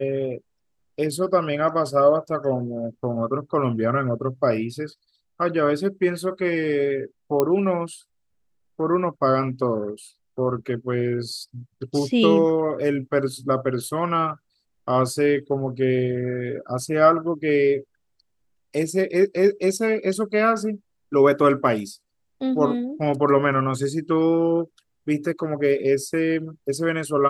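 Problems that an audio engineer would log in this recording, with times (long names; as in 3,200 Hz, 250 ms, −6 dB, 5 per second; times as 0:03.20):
0:07.40: click −8 dBFS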